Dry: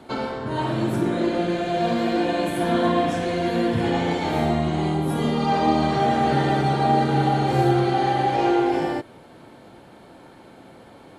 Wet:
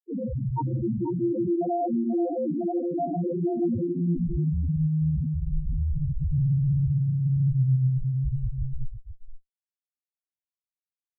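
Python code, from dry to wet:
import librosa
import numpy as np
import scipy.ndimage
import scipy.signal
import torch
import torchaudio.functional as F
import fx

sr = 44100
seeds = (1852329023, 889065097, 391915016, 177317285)

y = fx.filter_sweep_lowpass(x, sr, from_hz=4000.0, to_hz=130.0, start_s=2.17, end_s=4.58, q=1.2)
y = fx.schmitt(y, sr, flips_db=-28.5)
y = fx.spec_topn(y, sr, count=1)
y = y + 10.0 ** (-10.0 / 20.0) * np.pad(y, (int(485 * sr / 1000.0), 0))[:len(y)]
y = y * librosa.db_to_amplitude(8.5)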